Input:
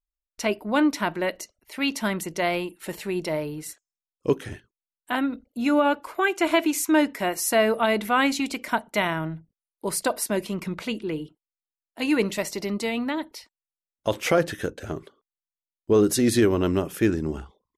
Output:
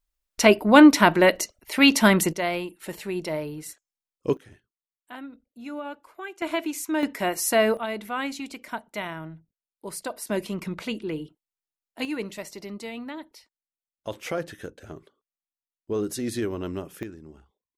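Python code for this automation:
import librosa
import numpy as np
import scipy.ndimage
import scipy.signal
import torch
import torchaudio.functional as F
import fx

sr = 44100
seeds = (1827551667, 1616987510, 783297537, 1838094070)

y = fx.gain(x, sr, db=fx.steps((0.0, 9.0), (2.33, -2.0), (4.37, -14.5), (6.42, -6.5), (7.03, 0.0), (7.77, -8.5), (10.27, -1.5), (12.05, -9.0), (17.03, -18.0)))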